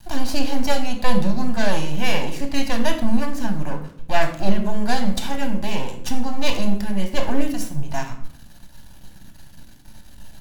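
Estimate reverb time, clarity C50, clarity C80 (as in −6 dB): 0.65 s, 9.0 dB, 12.5 dB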